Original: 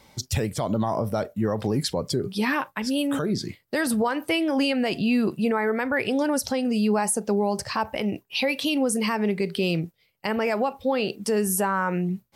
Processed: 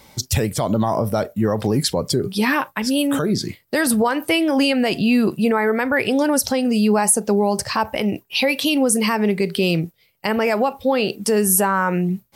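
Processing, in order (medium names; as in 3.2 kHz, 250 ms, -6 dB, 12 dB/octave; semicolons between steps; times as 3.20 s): treble shelf 10 kHz +8 dB; trim +5.5 dB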